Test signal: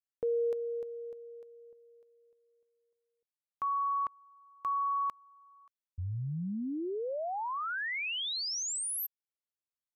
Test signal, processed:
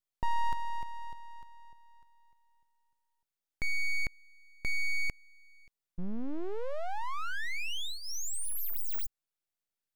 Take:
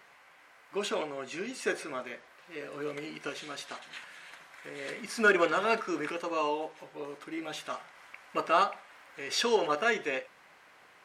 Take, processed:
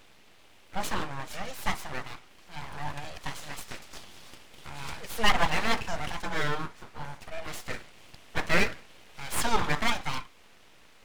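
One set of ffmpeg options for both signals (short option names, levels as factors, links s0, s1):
-af "equalizer=f=2300:t=o:w=0.25:g=-10.5,aeval=exprs='abs(val(0))':c=same,volume=1.68"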